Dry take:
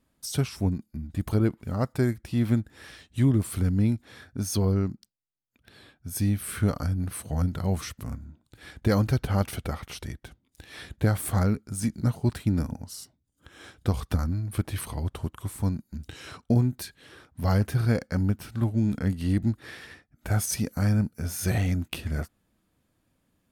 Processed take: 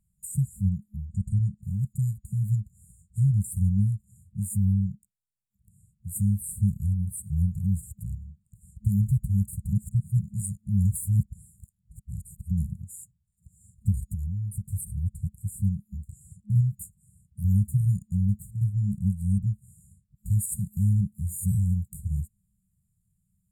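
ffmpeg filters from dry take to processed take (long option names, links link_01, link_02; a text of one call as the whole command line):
ffmpeg -i in.wav -filter_complex "[0:a]asplit=3[link_01][link_02][link_03];[link_01]afade=type=out:start_time=1.05:duration=0.02[link_04];[link_02]lowpass=frequency=8400:width=0.5412,lowpass=frequency=8400:width=1.3066,afade=type=in:start_time=1.05:duration=0.02,afade=type=out:start_time=1.61:duration=0.02[link_05];[link_03]afade=type=in:start_time=1.61:duration=0.02[link_06];[link_04][link_05][link_06]amix=inputs=3:normalize=0,asettb=1/sr,asplit=3[link_07][link_08][link_09];[link_07]atrim=end=13.984[link_10];[link_08]atrim=start=13.98:end=14.69,asetpts=PTS-STARTPTS,afade=type=in:duration=0.004:curve=qsin,afade=type=out:start_time=0.706:duration=0.004:curve=qsin,acompressor=threshold=-27dB:ratio=6:attack=3.2:release=140:knee=1:detection=peak[link_11];[link_09]atrim=start=14.686[link_12];[link_10][link_11]acrossfade=duration=0.004:curve1=hsin:curve2=qsin[link_13];[link_13][link_12]acrossfade=duration=0.004:curve1=qsin:curve2=hsin,asplit=3[link_14][link_15][link_16];[link_14]atrim=end=9.732[link_17];[link_15]atrim=start=9.728:end=12.512,asetpts=PTS-STARTPTS,areverse[link_18];[link_16]atrim=start=12.508[link_19];[link_17][link_18]acrossfade=duration=0.004:curve1=hsin:curve2=hsin[link_20];[link_20][link_19]acrossfade=duration=0.004:curve1=hsin:curve2=hsin,aemphasis=mode=reproduction:type=50kf,afftfilt=real='re*(1-between(b*sr/4096,210,6900))':imag='im*(1-between(b*sr/4096,210,6900))':win_size=4096:overlap=0.75,bass=frequency=250:gain=4,treble=frequency=4000:gain=13,volume=-2dB" out.wav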